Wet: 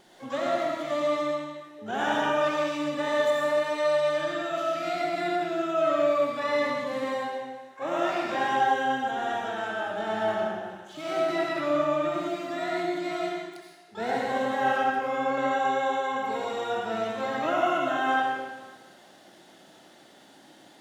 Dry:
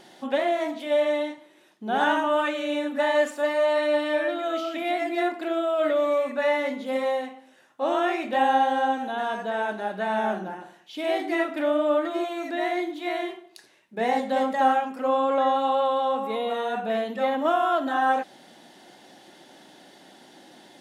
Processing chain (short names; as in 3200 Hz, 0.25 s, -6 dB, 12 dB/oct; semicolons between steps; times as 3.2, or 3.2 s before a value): harmoniser -12 st -14 dB, +12 st -9 dB; digital reverb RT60 1.3 s, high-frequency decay 0.95×, pre-delay 45 ms, DRR -2 dB; gain -7.5 dB